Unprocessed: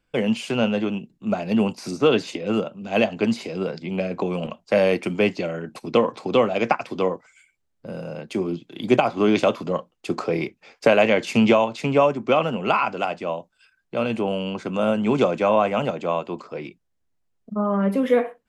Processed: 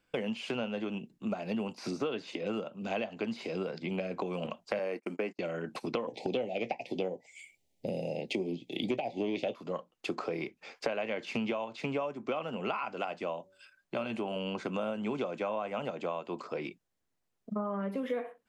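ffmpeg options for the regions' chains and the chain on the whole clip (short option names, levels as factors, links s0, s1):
-filter_complex "[0:a]asettb=1/sr,asplit=3[s0][s1][s2];[s0]atrim=end=4.794[s3];[s1]atrim=start=4.79:end=5.39,asetpts=PTS-STARTPTS,afade=t=in:d=0.004:c=qsin,afade=t=out:st=0.596:d=0.004:c=qsin,agate=range=0.0251:threshold=0.0355:ratio=16:release=100:detection=peak,highpass=f=210:w=0.5412,highpass=f=210:w=1.3066,equalizer=f=3400:w=3:g=-12[s4];[s2]atrim=start=5.386[s5];[s3][s4]acrossfade=d=0.004:c1=hsin:c2=qsin[s6];[s6][s5]acrossfade=d=0.004:c1=qsin:c2=hsin,asettb=1/sr,asplit=3[s7][s8][s9];[s7]atrim=end=6.074[s10];[s8]atrim=start=6.07:end=9.54,asetpts=PTS-STARTPTS,afade=t=in:d=0.004:c=qsin,afade=t=out:st=3.466:d=0.004:c=qsin,asuperstop=centerf=1300:order=8:qfactor=1.1,acontrast=69,asplit=2[s11][s12];[s12]adelay=16,volume=0.224[s13];[s11][s13]amix=inputs=2:normalize=0,atrim=end_sample=153027[s14];[s9]atrim=start=9.536[s15];[s10][s14]acrossfade=d=0.004:c1=hsin:c2=qsin[s16];[s16][s15]acrossfade=d=0.004:c1=qsin:c2=hsin,asettb=1/sr,asplit=3[s17][s18][s19];[s17]atrim=end=13.374[s20];[s18]atrim=start=13.37:end=14.36,asetpts=PTS-STARTPTS,afade=t=in:d=0.004:c=qsin,afade=t=out:st=0.986:d=0.004:c=qsin,bandreject=f=480:w=8.1,bandreject=f=95.11:t=h:w=4,bandreject=f=190.22:t=h:w=4,bandreject=f=285.33:t=h:w=4,bandreject=f=380.44:t=h:w=4,bandreject=f=475.55:t=h:w=4,bandreject=f=570.66:t=h:w=4[s21];[s19]atrim=start=14.356[s22];[s20][s21]acrossfade=d=0.004:c1=hsin:c2=qsin[s23];[s23][s22]acrossfade=d=0.004:c1=qsin:c2=hsin,acrossover=split=5000[s24][s25];[s25]acompressor=threshold=0.002:ratio=4:attack=1:release=60[s26];[s24][s26]amix=inputs=2:normalize=0,lowshelf=f=120:g=-11.5,acompressor=threshold=0.0251:ratio=6"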